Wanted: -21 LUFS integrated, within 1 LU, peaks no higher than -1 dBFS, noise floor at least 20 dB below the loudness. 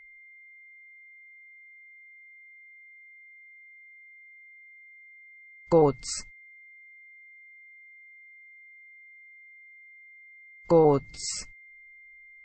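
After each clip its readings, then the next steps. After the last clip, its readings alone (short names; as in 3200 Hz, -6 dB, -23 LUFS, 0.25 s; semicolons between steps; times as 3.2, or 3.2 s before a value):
steady tone 2100 Hz; tone level -49 dBFS; loudness -25.0 LUFS; peak -9.5 dBFS; loudness target -21.0 LUFS
-> notch 2100 Hz, Q 30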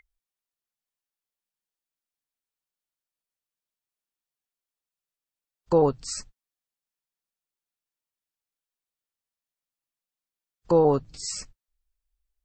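steady tone none; loudness -24.5 LUFS; peak -9.5 dBFS; loudness target -21.0 LUFS
-> gain +3.5 dB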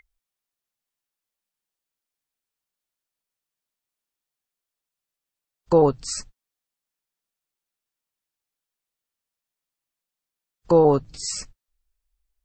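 loudness -21.0 LUFS; peak -6.0 dBFS; noise floor -88 dBFS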